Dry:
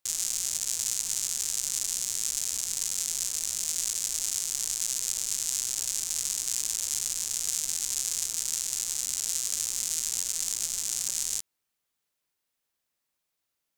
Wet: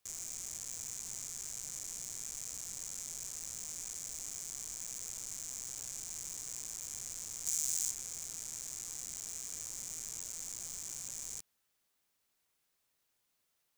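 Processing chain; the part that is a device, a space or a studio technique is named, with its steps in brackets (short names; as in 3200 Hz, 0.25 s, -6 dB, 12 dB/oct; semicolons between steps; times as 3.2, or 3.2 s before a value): notch 2400 Hz, Q 18; open-reel tape (soft clip -24 dBFS, distortion -7 dB; bell 130 Hz +3.5 dB 0.91 oct; white noise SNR 36 dB); 7.46–7.91 high shelf 3000 Hz +10.5 dB; gain -6 dB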